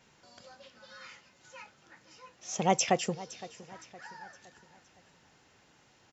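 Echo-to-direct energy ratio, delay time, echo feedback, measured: -17.0 dB, 514 ms, 45%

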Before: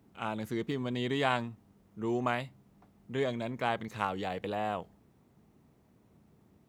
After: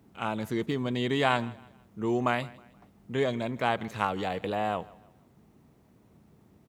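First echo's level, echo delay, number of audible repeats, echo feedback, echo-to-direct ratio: -22.0 dB, 159 ms, 2, 38%, -21.5 dB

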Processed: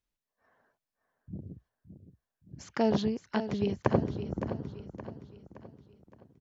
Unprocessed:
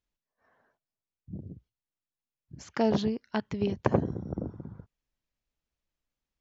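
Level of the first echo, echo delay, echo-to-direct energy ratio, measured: -10.5 dB, 568 ms, -9.5 dB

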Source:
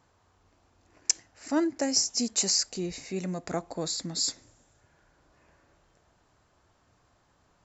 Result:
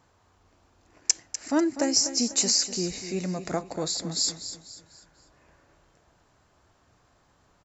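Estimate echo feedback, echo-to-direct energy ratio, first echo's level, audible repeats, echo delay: 39%, -11.0 dB, -11.5 dB, 3, 247 ms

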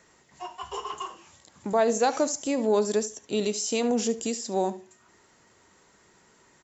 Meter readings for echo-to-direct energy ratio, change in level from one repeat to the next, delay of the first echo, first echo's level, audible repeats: -17.0 dB, -15.0 dB, 73 ms, -17.0 dB, 2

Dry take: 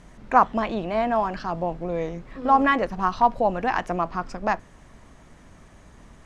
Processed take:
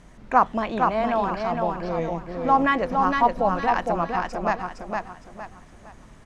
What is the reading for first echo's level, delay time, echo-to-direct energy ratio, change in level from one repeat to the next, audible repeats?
-4.0 dB, 461 ms, -3.5 dB, -9.5 dB, 4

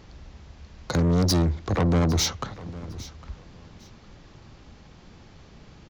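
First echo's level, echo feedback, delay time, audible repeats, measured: -18.5 dB, 23%, 806 ms, 2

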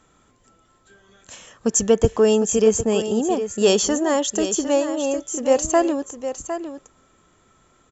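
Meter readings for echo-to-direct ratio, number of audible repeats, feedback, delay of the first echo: -10.0 dB, 1, no regular repeats, 757 ms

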